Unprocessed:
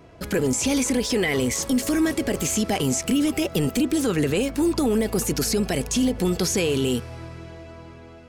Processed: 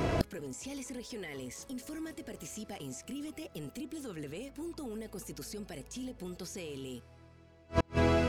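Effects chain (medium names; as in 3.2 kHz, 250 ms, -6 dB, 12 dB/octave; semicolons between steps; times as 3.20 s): inverted gate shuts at -32 dBFS, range -38 dB; trim +18 dB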